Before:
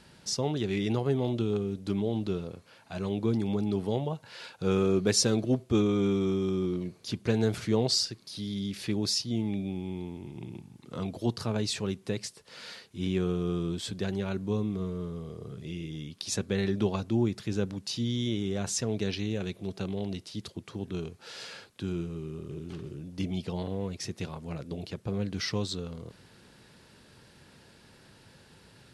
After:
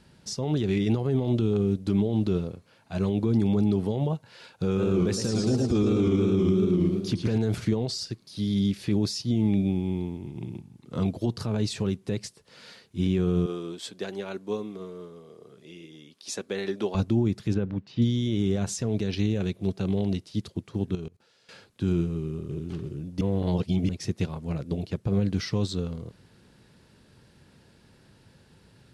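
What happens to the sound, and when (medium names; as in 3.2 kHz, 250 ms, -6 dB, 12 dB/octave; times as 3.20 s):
4.66–7.38 s: modulated delay 110 ms, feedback 59%, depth 157 cents, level -5 dB
13.46–16.95 s: high-pass 400 Hz
17.54–18.02 s: Chebyshev low-pass 2.2 kHz
20.95–21.49 s: level held to a coarse grid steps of 20 dB
23.21–23.89 s: reverse
whole clip: peak limiter -24.5 dBFS; bass shelf 380 Hz +7 dB; upward expansion 1.5:1, over -44 dBFS; trim +5.5 dB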